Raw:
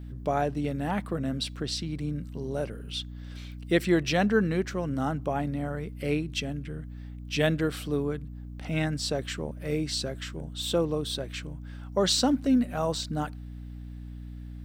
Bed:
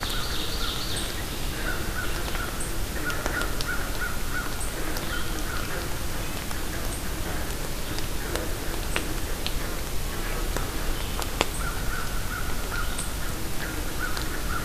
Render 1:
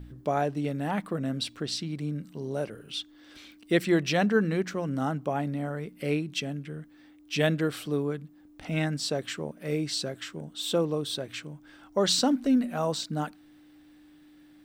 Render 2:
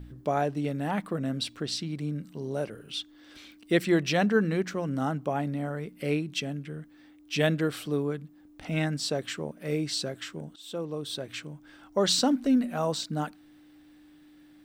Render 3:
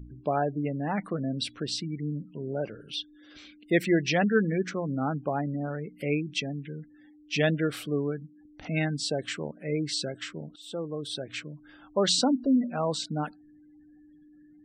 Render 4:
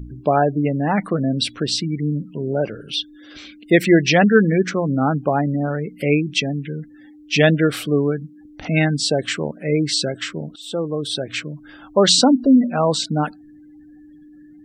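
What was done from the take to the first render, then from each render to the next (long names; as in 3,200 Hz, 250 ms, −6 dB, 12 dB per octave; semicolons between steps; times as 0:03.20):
hum removal 60 Hz, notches 4
0:10.56–0:11.36: fade in, from −17.5 dB
gate on every frequency bin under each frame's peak −25 dB strong; dynamic equaliser 2,200 Hz, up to +4 dB, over −48 dBFS, Q 2.6
level +10.5 dB; brickwall limiter −2 dBFS, peak gain reduction 2 dB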